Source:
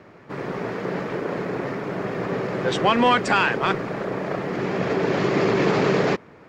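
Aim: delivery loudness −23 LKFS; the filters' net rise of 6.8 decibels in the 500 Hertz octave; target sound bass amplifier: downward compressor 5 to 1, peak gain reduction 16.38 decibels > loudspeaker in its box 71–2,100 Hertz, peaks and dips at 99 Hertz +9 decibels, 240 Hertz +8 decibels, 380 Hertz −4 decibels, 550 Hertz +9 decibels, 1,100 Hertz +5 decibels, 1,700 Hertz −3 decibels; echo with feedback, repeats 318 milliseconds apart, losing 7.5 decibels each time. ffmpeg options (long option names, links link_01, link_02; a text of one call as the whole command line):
ffmpeg -i in.wav -af "equalizer=frequency=500:width_type=o:gain=4,aecho=1:1:318|636|954|1272|1590:0.422|0.177|0.0744|0.0312|0.0131,acompressor=threshold=-30dB:ratio=5,highpass=frequency=71:width=0.5412,highpass=frequency=71:width=1.3066,equalizer=frequency=99:width_type=q:width=4:gain=9,equalizer=frequency=240:width_type=q:width=4:gain=8,equalizer=frequency=380:width_type=q:width=4:gain=-4,equalizer=frequency=550:width_type=q:width=4:gain=9,equalizer=frequency=1100:width_type=q:width=4:gain=5,equalizer=frequency=1700:width_type=q:width=4:gain=-3,lowpass=frequency=2100:width=0.5412,lowpass=frequency=2100:width=1.3066,volume=6.5dB" out.wav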